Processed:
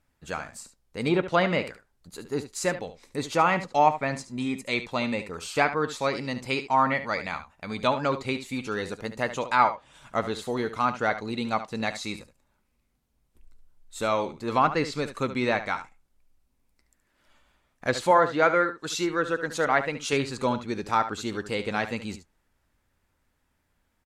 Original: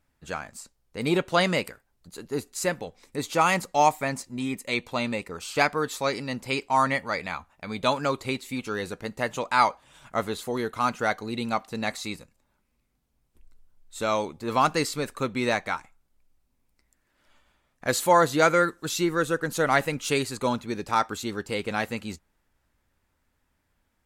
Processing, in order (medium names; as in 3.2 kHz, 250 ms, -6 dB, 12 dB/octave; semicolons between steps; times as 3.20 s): low-pass that closes with the level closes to 2.4 kHz, closed at -18.5 dBFS; 18.11–20.13 s: bass shelf 210 Hz -10 dB; delay 72 ms -12 dB